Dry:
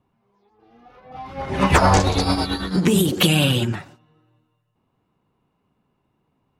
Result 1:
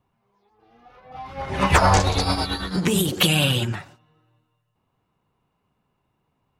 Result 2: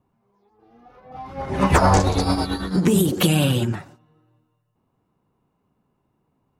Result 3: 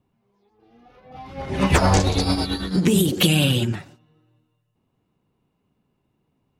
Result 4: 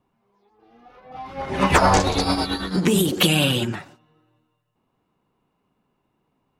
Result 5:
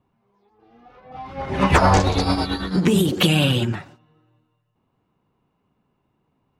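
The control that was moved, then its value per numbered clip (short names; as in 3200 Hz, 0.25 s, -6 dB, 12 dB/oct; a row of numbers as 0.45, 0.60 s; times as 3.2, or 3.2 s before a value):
bell, frequency: 270, 3000, 1100, 94, 12000 Hz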